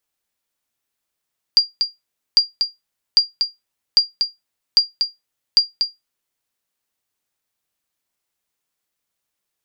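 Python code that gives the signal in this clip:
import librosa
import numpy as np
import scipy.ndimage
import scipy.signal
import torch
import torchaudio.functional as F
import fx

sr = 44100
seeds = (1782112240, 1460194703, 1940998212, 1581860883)

y = fx.sonar_ping(sr, hz=4780.0, decay_s=0.18, every_s=0.8, pings=6, echo_s=0.24, echo_db=-6.5, level_db=-3.5)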